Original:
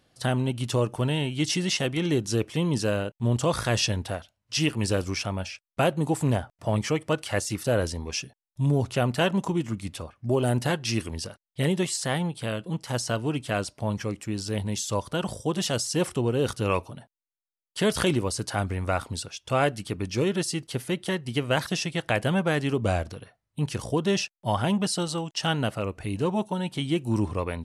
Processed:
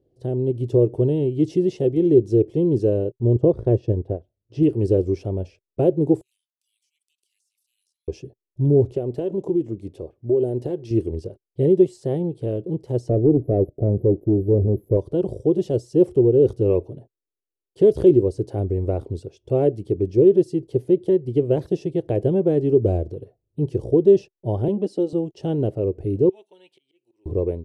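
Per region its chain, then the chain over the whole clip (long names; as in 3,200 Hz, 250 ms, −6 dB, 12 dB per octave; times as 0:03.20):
0:03.35–0:04.63: low-pass filter 1,300 Hz 6 dB per octave + transient designer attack +4 dB, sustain −7 dB
0:06.21–0:08.08: Butterworth high-pass 2,300 Hz 48 dB per octave + first difference + downward compressor 12 to 1, threshold −50 dBFS
0:08.92–0:10.91: low-shelf EQ 170 Hz −9.5 dB + downward compressor 4 to 1, threshold −26 dBFS
0:13.09–0:14.97: linear-phase brick-wall band-stop 760–11,000 Hz + leveller curve on the samples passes 2
0:24.68–0:25.13: Chebyshev high-pass filter 210 Hz, order 3 + high-shelf EQ 8,800 Hz −8 dB + comb filter 3.8 ms, depth 32%
0:26.29–0:27.26: volume swells 521 ms + high-pass with resonance 2,400 Hz, resonance Q 2 + spectral tilt −2 dB per octave
whole clip: drawn EQ curve 120 Hz 0 dB, 230 Hz −7 dB, 380 Hz +10 dB, 1,300 Hz −29 dB, 3,200 Hz −24 dB, 8,200 Hz −27 dB; automatic gain control gain up to 6 dB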